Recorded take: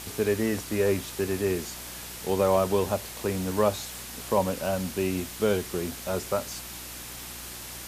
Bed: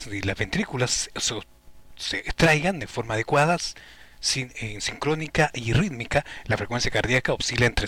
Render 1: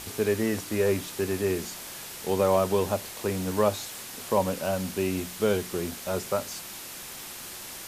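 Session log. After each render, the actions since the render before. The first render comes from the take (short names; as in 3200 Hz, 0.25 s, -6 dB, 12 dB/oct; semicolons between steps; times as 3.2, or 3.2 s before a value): de-hum 60 Hz, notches 5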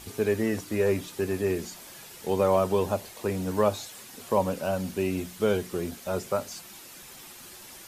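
denoiser 8 dB, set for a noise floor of -41 dBFS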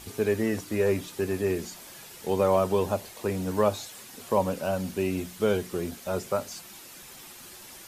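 nothing audible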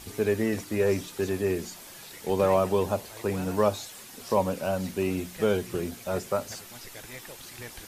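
add bed -22.5 dB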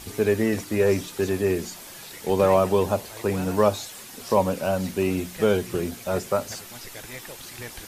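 gain +4 dB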